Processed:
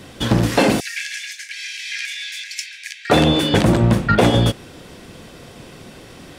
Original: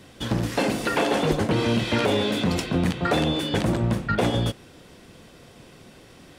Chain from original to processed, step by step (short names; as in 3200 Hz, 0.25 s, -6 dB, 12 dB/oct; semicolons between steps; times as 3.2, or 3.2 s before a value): 0.8–3.1 rippled Chebyshev high-pass 1600 Hz, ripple 9 dB; gain +8.5 dB